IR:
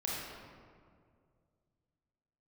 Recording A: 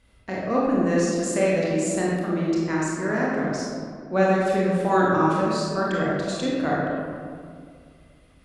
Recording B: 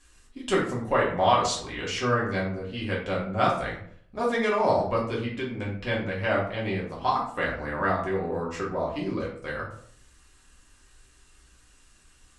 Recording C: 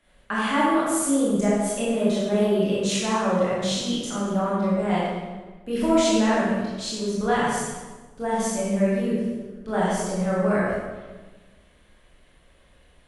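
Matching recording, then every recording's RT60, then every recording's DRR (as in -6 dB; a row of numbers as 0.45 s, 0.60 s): A; 2.1 s, 0.60 s, 1.3 s; -5.5 dB, -5.0 dB, -8.5 dB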